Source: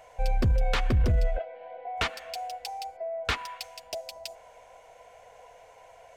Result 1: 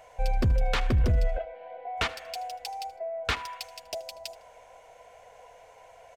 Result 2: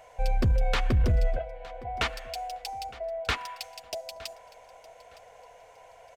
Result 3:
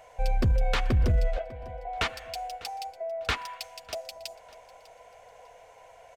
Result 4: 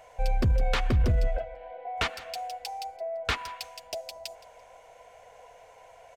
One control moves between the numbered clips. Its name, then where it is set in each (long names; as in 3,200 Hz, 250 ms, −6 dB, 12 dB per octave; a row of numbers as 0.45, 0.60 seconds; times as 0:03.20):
repeating echo, delay time: 78, 913, 599, 169 milliseconds